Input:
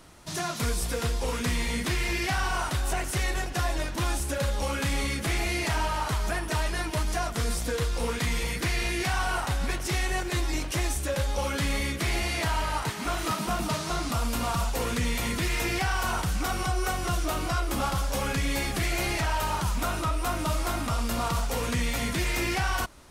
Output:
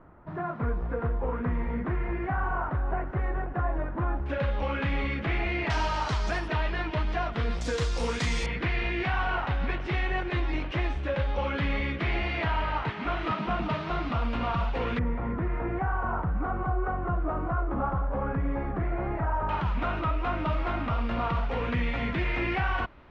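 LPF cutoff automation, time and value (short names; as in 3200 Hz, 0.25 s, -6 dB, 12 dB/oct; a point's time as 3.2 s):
LPF 24 dB/oct
1500 Hz
from 4.26 s 2800 Hz
from 5.7 s 5700 Hz
from 6.48 s 3300 Hz
from 7.61 s 7100 Hz
from 8.46 s 3000 Hz
from 14.99 s 1400 Hz
from 19.49 s 2800 Hz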